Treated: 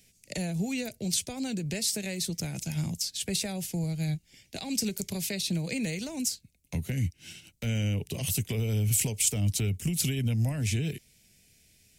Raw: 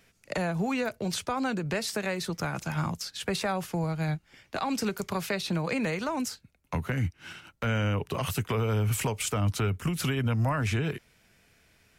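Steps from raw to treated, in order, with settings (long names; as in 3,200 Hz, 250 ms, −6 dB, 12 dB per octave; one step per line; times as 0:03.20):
drawn EQ curve 200 Hz 0 dB, 720 Hz −10 dB, 1,200 Hz −25 dB, 2,100 Hz −4 dB, 8,000 Hz +9 dB, 14,000 Hz +7 dB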